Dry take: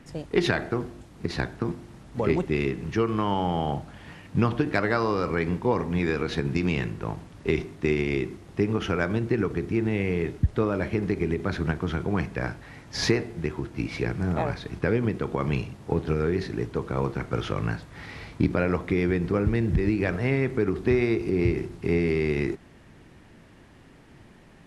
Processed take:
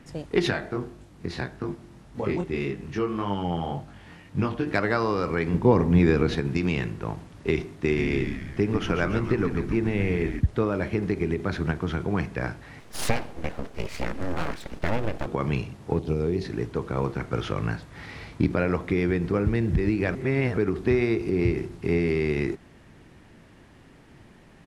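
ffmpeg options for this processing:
ffmpeg -i in.wav -filter_complex "[0:a]asplit=3[link_01][link_02][link_03];[link_01]afade=type=out:start_time=0.49:duration=0.02[link_04];[link_02]flanger=delay=20:depth=3.7:speed=1.8,afade=type=in:start_time=0.49:duration=0.02,afade=type=out:start_time=4.66:duration=0.02[link_05];[link_03]afade=type=in:start_time=4.66:duration=0.02[link_06];[link_04][link_05][link_06]amix=inputs=3:normalize=0,asettb=1/sr,asplit=3[link_07][link_08][link_09];[link_07]atrim=end=5.544[link_10];[link_08]atrim=start=5.54:end=6.36,asetpts=PTS-STARTPTS,afade=type=in:duration=0.004:curve=qsin,afade=type=out:start_time=0.816:duration=0.004:curve=qsin,lowshelf=frequency=480:gain=9[link_11];[link_09]atrim=start=6.356[link_12];[link_10][link_11]acrossfade=duration=0.004:curve1=hsin:curve2=qsin[link_13];[link_13][link_12]acrossfade=duration=0.004:curve1=qsin:curve2=hsin,asplit=3[link_14][link_15][link_16];[link_14]afade=type=out:start_time=7.87:duration=0.02[link_17];[link_15]asplit=8[link_18][link_19][link_20][link_21][link_22][link_23][link_24][link_25];[link_19]adelay=141,afreqshift=-120,volume=-7dB[link_26];[link_20]adelay=282,afreqshift=-240,volume=-12.2dB[link_27];[link_21]adelay=423,afreqshift=-360,volume=-17.4dB[link_28];[link_22]adelay=564,afreqshift=-480,volume=-22.6dB[link_29];[link_23]adelay=705,afreqshift=-600,volume=-27.8dB[link_30];[link_24]adelay=846,afreqshift=-720,volume=-33dB[link_31];[link_25]adelay=987,afreqshift=-840,volume=-38.2dB[link_32];[link_18][link_26][link_27][link_28][link_29][link_30][link_31][link_32]amix=inputs=8:normalize=0,afade=type=in:start_time=7.87:duration=0.02,afade=type=out:start_time=10.39:duration=0.02[link_33];[link_16]afade=type=in:start_time=10.39:duration=0.02[link_34];[link_17][link_33][link_34]amix=inputs=3:normalize=0,asettb=1/sr,asplit=3[link_35][link_36][link_37];[link_35]atrim=end=12.804[link_38];[link_36]atrim=start=12.8:end=15.26,asetpts=PTS-STARTPTS,afade=type=in:duration=0.004:curve=qsin,afade=type=out:start_time=2.456:duration=0.004:curve=qsin,aeval=exprs='abs(val(0))':channel_layout=same[link_39];[link_37]atrim=start=15.256[link_40];[link_38][link_39]acrossfade=duration=0.004:curve1=hsin:curve2=qsin[link_41];[link_41][link_40]acrossfade=duration=0.004:curve1=qsin:curve2=hsin,asettb=1/sr,asplit=3[link_42][link_43][link_44];[link_42]atrim=end=15.994[link_45];[link_43]atrim=start=15.99:end=16.45,asetpts=PTS-STARTPTS,afade=type=in:duration=0.004:curve=qsin,afade=type=out:start_time=0.456:duration=0.004:curve=qsin,equalizer=frequency=1600:width=1.5:gain=-14[link_46];[link_44]atrim=start=16.446[link_47];[link_45][link_46]acrossfade=duration=0.004:curve1=hsin:curve2=qsin[link_48];[link_48][link_47]acrossfade=duration=0.004:curve1=qsin:curve2=hsin,asplit=3[link_49][link_50][link_51];[link_49]atrim=end=20.152[link_52];[link_50]atrim=start=20.148:end=20.572,asetpts=PTS-STARTPTS,areverse[link_53];[link_51]atrim=start=20.568[link_54];[link_52][link_53]acrossfade=duration=0.004:curve1=hsin:curve2=hsin[link_55];[link_55][link_54]acrossfade=duration=0.004:curve1=hsin:curve2=hsin" out.wav

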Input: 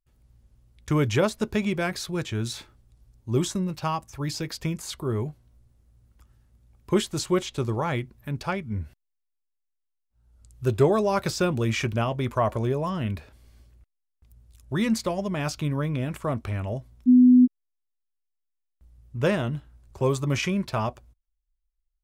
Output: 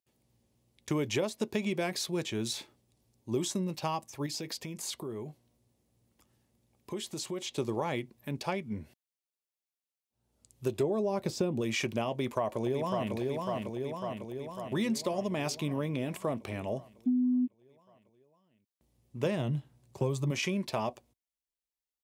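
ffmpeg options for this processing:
ffmpeg -i in.wav -filter_complex "[0:a]asettb=1/sr,asplit=3[link_01][link_02][link_03];[link_01]atrim=end=4.264[link_04];[link_02]atrim=start=4.26:end=7.52,asetpts=PTS-STARTPTS,afade=type=in:duration=0.004:curve=qsin,afade=type=out:start_time=3.256:duration=0.004:curve=qsin,acompressor=threshold=-32dB:ratio=6:attack=3.2:release=140:knee=1:detection=peak[link_05];[link_03]atrim=start=7.516[link_06];[link_04][link_05]acrossfade=duration=0.004:curve1=hsin:curve2=qsin[link_07];[link_07][link_06]acrossfade=duration=0.004:curve1=qsin:curve2=hsin,asplit=3[link_08][link_09][link_10];[link_08]afade=type=out:start_time=10.82:duration=0.02[link_11];[link_09]tiltshelf=frequency=730:gain=6,afade=type=in:start_time=10.82:duration=0.02,afade=type=out:start_time=11.6:duration=0.02[link_12];[link_10]afade=type=in:start_time=11.6:duration=0.02[link_13];[link_11][link_12][link_13]amix=inputs=3:normalize=0,asplit=2[link_14][link_15];[link_15]afade=type=in:start_time=12.11:duration=0.01,afade=type=out:start_time=13.14:duration=0.01,aecho=0:1:550|1100|1650|2200|2750|3300|3850|4400|4950|5500:0.562341|0.365522|0.237589|0.154433|0.100381|0.0652479|0.0424112|0.0275673|0.0179187|0.0116472[link_16];[link_14][link_16]amix=inputs=2:normalize=0,asettb=1/sr,asplit=3[link_17][link_18][link_19];[link_17]atrim=end=19.254[link_20];[link_18]atrim=start=19.25:end=20.31,asetpts=PTS-STARTPTS,afade=type=in:duration=0.004:curve=qsin,afade=type=out:start_time=1.056:duration=0.004:curve=qsin,equalizer=frequency=130:width_type=o:width=0.77:gain=11.5[link_21];[link_19]atrim=start=20.306[link_22];[link_20][link_21]acrossfade=duration=0.004:curve1=hsin:curve2=qsin[link_23];[link_23][link_22]acrossfade=duration=0.004:curve1=qsin:curve2=hsin,highpass=210,equalizer=frequency=1400:width=2.3:gain=-10,acompressor=threshold=-27dB:ratio=6" out.wav

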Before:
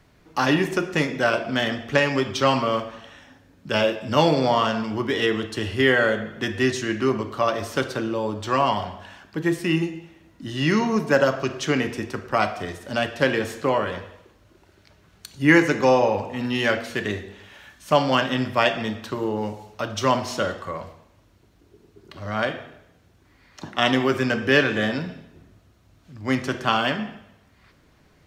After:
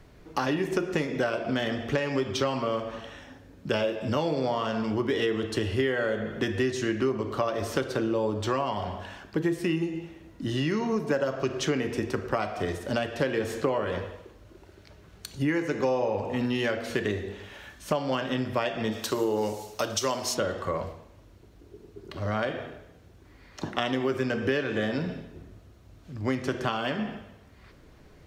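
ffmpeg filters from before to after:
ffmpeg -i in.wav -filter_complex "[0:a]asplit=3[link_01][link_02][link_03];[link_01]afade=type=out:start_time=18.91:duration=0.02[link_04];[link_02]bass=frequency=250:gain=-7,treble=frequency=4000:gain=14,afade=type=in:start_time=18.91:duration=0.02,afade=type=out:start_time=20.33:duration=0.02[link_05];[link_03]afade=type=in:start_time=20.33:duration=0.02[link_06];[link_04][link_05][link_06]amix=inputs=3:normalize=0,lowshelf=frequency=77:gain=10,acompressor=threshold=-26dB:ratio=10,equalizer=frequency=430:width_type=o:width=1.2:gain=5.5" out.wav

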